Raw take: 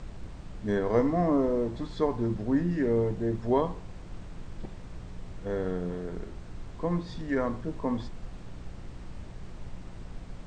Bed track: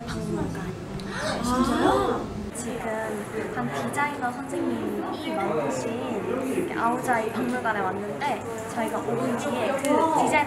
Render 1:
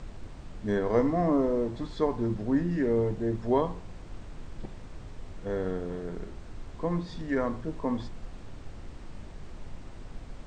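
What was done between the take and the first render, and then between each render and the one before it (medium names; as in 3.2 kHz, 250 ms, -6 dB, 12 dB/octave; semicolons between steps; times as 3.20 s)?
de-hum 60 Hz, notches 3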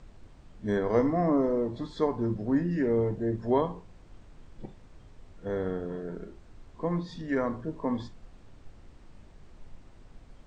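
noise print and reduce 9 dB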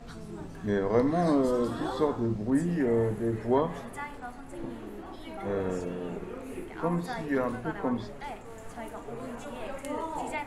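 add bed track -13 dB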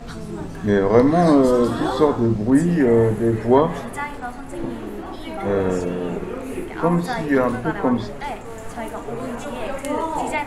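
trim +10.5 dB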